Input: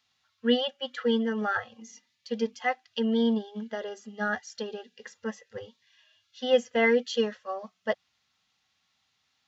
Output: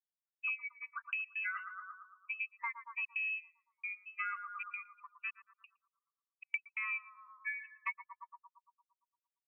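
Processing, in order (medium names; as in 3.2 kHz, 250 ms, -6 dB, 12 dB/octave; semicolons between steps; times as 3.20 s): expander on every frequency bin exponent 2; pitch shift -1 st; trance gate "..xxxxxxx.x.xxx." 133 bpm -60 dB; comb 3.7 ms, depth 44%; frequency inversion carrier 2.8 kHz; brick-wall FIR high-pass 930 Hz; on a send: bucket-brigade echo 114 ms, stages 1024, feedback 58%, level -9 dB; on the sum: compression 6:1, threshold -44 dBFS, peak gain reduction 23.5 dB; trim +6.5 dB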